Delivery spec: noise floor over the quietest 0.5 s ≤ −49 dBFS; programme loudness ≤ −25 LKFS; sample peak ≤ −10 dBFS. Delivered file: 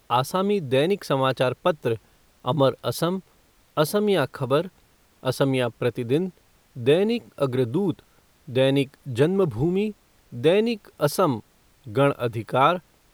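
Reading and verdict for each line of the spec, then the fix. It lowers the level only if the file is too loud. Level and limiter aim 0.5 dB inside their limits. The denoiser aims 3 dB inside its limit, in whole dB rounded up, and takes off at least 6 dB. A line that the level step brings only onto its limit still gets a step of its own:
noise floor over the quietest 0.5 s −59 dBFS: in spec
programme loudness −24.0 LKFS: out of spec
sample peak −6.0 dBFS: out of spec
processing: level −1.5 dB
brickwall limiter −10.5 dBFS

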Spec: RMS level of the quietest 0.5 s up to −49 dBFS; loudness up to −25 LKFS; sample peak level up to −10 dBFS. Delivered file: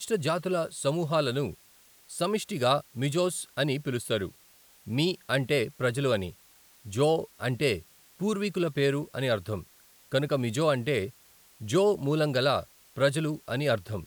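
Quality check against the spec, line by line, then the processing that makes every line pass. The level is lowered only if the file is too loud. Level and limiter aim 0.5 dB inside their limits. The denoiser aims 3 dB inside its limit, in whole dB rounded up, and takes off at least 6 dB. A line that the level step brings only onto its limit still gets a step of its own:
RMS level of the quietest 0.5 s −58 dBFS: in spec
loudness −28.5 LKFS: in spec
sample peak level −10.5 dBFS: in spec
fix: no processing needed

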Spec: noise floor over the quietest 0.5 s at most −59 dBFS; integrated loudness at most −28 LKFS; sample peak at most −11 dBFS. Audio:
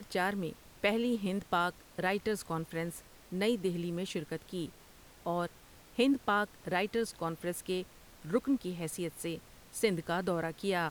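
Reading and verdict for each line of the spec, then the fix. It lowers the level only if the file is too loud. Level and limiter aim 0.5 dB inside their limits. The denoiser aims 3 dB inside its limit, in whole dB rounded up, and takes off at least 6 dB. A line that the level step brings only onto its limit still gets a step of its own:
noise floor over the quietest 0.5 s −57 dBFS: out of spec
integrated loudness −34.5 LKFS: in spec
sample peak −15.5 dBFS: in spec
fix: broadband denoise 6 dB, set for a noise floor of −57 dBFS

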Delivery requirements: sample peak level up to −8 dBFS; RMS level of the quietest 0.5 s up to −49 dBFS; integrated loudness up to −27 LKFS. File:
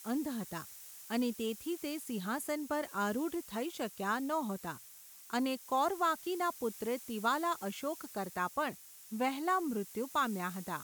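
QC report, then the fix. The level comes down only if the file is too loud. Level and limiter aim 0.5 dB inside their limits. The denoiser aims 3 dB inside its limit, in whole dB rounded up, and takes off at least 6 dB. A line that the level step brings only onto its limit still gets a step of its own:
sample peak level −18.0 dBFS: in spec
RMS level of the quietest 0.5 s −55 dBFS: in spec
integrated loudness −36.0 LKFS: in spec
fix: no processing needed

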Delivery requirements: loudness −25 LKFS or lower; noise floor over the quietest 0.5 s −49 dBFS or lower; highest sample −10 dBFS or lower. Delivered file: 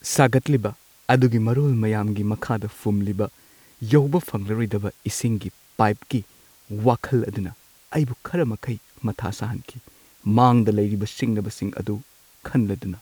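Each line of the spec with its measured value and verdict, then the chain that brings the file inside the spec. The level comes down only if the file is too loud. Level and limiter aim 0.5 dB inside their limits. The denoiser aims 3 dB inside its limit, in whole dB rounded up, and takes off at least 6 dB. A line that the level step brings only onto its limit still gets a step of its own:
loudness −23.0 LKFS: out of spec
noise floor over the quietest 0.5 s −53 dBFS: in spec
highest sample −4.0 dBFS: out of spec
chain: level −2.5 dB
brickwall limiter −10.5 dBFS

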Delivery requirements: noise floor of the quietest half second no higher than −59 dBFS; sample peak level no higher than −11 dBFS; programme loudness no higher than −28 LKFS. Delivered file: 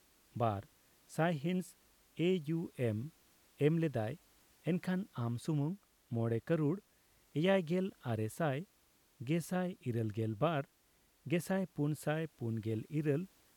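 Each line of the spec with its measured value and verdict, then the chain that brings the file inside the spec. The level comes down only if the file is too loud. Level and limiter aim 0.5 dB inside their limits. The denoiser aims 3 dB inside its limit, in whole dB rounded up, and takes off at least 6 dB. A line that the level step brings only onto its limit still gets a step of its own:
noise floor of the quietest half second −71 dBFS: in spec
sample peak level −19.5 dBFS: in spec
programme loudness −37.0 LKFS: in spec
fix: no processing needed

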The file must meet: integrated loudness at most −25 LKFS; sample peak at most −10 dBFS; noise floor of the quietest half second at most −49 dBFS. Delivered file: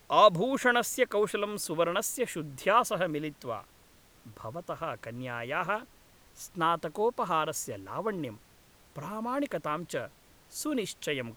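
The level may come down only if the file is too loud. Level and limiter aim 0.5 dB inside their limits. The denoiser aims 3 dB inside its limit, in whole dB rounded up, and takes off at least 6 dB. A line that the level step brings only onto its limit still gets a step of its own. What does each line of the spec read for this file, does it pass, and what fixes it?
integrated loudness −30.5 LKFS: in spec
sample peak −8.0 dBFS: out of spec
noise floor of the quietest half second −60 dBFS: in spec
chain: brickwall limiter −10.5 dBFS

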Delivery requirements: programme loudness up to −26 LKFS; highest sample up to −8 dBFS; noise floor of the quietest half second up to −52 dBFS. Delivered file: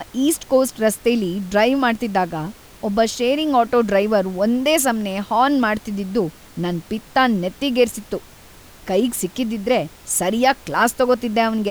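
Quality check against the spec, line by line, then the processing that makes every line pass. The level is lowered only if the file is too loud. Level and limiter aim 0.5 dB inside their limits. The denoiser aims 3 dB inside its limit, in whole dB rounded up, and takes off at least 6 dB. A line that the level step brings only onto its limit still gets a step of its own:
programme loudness −19.5 LKFS: out of spec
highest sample −4.5 dBFS: out of spec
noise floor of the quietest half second −44 dBFS: out of spec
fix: broadband denoise 6 dB, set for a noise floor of −44 dBFS
level −7 dB

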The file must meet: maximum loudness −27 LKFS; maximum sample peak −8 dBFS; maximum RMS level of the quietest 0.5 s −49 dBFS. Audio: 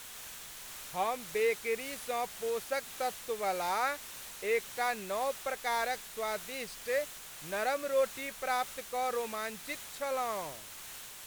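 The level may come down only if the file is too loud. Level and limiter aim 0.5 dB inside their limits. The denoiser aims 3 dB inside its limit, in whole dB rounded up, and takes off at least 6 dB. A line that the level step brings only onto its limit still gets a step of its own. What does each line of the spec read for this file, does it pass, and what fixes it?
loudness −35.0 LKFS: in spec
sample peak −18.5 dBFS: in spec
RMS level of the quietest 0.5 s −47 dBFS: out of spec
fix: broadband denoise 6 dB, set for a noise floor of −47 dBFS

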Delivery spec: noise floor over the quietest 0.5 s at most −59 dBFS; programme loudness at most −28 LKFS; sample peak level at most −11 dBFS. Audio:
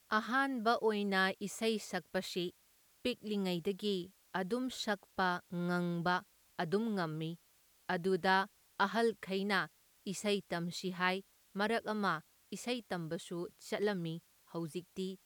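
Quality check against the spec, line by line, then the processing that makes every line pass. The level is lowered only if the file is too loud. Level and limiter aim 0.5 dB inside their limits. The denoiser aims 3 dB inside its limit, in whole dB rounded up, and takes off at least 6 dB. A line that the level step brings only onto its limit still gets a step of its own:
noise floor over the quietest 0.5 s −69 dBFS: in spec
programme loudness −36.5 LKFS: in spec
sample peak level −17.0 dBFS: in spec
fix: no processing needed

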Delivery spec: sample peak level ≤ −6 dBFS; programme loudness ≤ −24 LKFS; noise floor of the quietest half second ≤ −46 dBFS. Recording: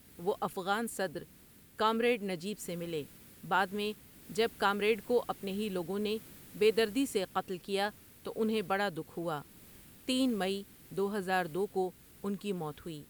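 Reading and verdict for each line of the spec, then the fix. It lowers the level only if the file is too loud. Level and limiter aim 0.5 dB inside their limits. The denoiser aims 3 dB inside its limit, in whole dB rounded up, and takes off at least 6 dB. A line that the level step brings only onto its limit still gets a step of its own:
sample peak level −15.5 dBFS: in spec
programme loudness −34.0 LKFS: in spec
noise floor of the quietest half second −58 dBFS: in spec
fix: no processing needed

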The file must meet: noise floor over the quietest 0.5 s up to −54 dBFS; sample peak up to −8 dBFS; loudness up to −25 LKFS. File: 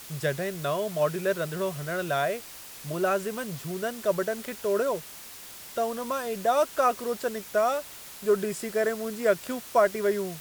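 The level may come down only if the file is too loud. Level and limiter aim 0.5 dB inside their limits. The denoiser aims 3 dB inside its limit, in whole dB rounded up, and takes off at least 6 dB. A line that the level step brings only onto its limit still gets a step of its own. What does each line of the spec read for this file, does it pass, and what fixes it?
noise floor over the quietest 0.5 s −44 dBFS: out of spec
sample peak −9.0 dBFS: in spec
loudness −28.0 LKFS: in spec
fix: broadband denoise 13 dB, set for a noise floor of −44 dBFS

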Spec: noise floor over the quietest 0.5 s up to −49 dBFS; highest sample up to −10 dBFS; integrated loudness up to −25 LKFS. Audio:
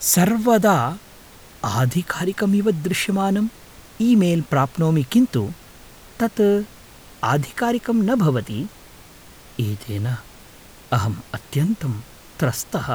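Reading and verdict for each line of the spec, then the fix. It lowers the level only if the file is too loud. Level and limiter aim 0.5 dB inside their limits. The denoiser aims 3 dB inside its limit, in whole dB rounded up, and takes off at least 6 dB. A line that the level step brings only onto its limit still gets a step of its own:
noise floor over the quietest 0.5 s −45 dBFS: out of spec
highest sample −4.5 dBFS: out of spec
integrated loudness −21.0 LKFS: out of spec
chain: level −4.5 dB
brickwall limiter −10.5 dBFS

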